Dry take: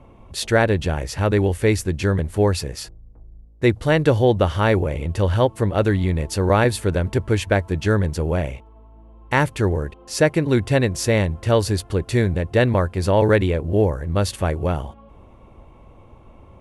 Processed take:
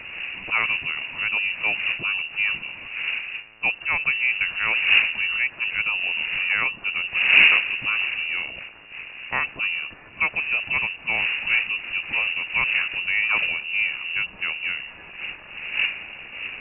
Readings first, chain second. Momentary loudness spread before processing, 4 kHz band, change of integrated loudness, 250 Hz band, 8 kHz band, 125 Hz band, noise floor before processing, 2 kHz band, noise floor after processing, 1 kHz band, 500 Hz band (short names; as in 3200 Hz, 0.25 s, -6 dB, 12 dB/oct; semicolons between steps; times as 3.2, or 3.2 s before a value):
8 LU, +6.5 dB, -1.0 dB, -25.0 dB, under -40 dB, under -25 dB, -47 dBFS, +8.5 dB, -44 dBFS, -8.0 dB, -25.0 dB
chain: switching spikes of -14.5 dBFS; wind noise 450 Hz -22 dBFS; inverted band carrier 2800 Hz; gain -7 dB